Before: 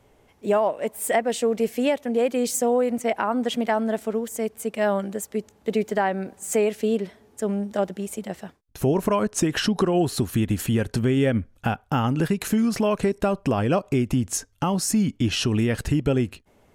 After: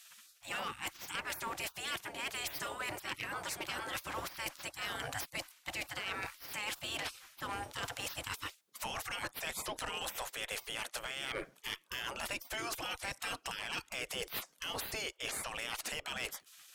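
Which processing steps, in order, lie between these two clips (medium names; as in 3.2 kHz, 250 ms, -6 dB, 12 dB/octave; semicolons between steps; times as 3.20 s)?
spectral gate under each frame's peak -25 dB weak; reverse; compression 12:1, threshold -51 dBFS, peak gain reduction 18.5 dB; reverse; one-sided clip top -50 dBFS; trim +15.5 dB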